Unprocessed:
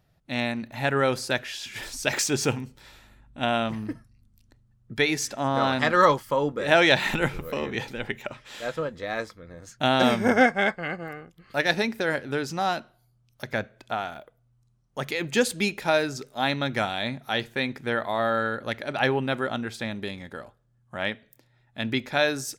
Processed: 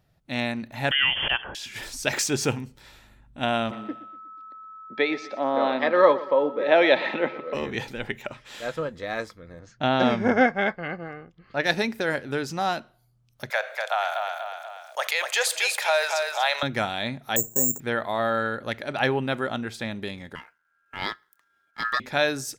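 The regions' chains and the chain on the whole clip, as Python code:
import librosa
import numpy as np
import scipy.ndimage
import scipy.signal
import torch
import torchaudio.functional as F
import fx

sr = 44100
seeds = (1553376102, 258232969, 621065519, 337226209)

y = fx.chain(x, sr, fx.freq_invert(carrier_hz=3300),
    fx.pre_swell(db_per_s=36.0), at=(0.91, 1.55))
y = fx.dmg_tone(y, sr, hz=1300.0, level_db=-34.0, at=(3.7, 7.53), fade=0.02)
y = fx.cabinet(y, sr, low_hz=240.0, low_slope=24, high_hz=3600.0, hz=(560.0, 1400.0, 2900.0), db=(6, -8, -6), at=(3.7, 7.53), fade=0.02)
y = fx.echo_feedback(y, sr, ms=121, feedback_pct=43, wet_db=-16.5, at=(3.7, 7.53), fade=0.02)
y = fx.chain(y, sr, fx.lowpass(hz=6400.0, slope=24),
    fx.high_shelf(hz=3700.0, db=-9.0), at=(9.59, 11.64))
y = fx.chain(y, sr, fx.steep_highpass(hz=560.0, slope=48),
    fx.echo_feedback(ms=242, feedback_pct=28, wet_db=-8.5),
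    fx.env_flatten(amount_pct=50), at=(13.5, 16.63))
y = fx.chain(y, sr, fx.lowpass(hz=1000.0, slope=24),
    fx.resample_bad(factor=6, down='none', up='zero_stuff'), at=(17.36, 17.8))
y = fx.chain(y, sr, fx.law_mismatch(coded='A'),
    fx.low_shelf(hz=310.0, db=8.5),
    fx.ring_mod(carrier_hz=1500.0), at=(20.35, 22.0))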